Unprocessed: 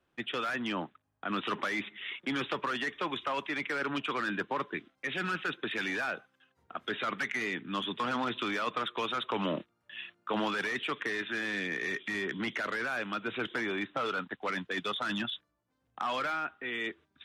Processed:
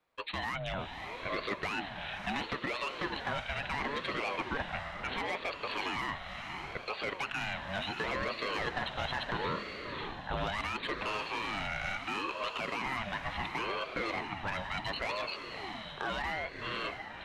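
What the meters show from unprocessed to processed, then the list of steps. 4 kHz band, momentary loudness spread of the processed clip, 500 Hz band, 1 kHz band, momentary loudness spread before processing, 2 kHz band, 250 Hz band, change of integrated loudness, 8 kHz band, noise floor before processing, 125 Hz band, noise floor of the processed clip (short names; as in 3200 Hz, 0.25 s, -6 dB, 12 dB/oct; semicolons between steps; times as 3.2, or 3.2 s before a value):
-1.0 dB, 5 LU, -2.0 dB, -0.5 dB, 5 LU, -2.5 dB, -6.0 dB, -2.0 dB, -1.5 dB, -78 dBFS, +2.5 dB, -45 dBFS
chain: diffused feedback echo 0.596 s, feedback 45%, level -6 dB; ring modulator with a swept carrier 610 Hz, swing 40%, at 0.72 Hz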